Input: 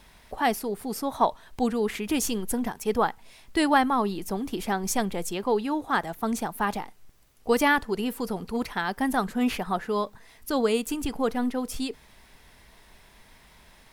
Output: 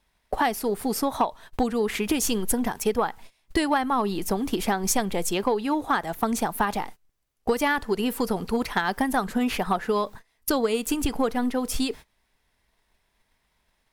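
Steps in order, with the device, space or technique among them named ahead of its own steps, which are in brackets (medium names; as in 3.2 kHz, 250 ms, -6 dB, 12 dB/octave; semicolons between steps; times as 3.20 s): gate -43 dBFS, range -23 dB; drum-bus smash (transient shaper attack +5 dB, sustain 0 dB; compression 6:1, threshold -25 dBFS, peak gain reduction 13 dB; saturation -16.5 dBFS, distortion -25 dB); peaking EQ 180 Hz -2 dB 1.9 oct; trim +6.5 dB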